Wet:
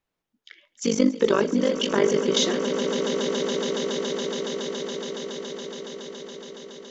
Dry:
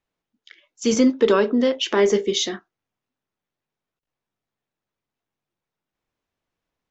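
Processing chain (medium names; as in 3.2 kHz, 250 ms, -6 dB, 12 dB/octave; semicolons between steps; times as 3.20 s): 0.86–2.37 s: AM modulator 49 Hz, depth 80%; echo with a slow build-up 140 ms, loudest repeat 8, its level -13 dB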